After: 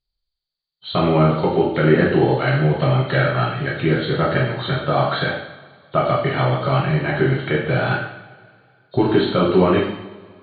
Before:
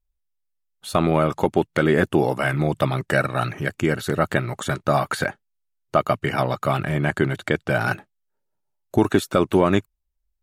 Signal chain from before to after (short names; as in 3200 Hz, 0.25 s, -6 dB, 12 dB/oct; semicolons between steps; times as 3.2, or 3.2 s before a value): nonlinear frequency compression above 3000 Hz 4:1; two-slope reverb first 0.73 s, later 2.4 s, from -19 dB, DRR -4.5 dB; gain -3.5 dB